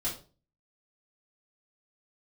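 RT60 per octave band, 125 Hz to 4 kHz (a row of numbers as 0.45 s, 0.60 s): 0.55 s, 0.45 s, 0.40 s, 0.35 s, 0.30 s, 0.30 s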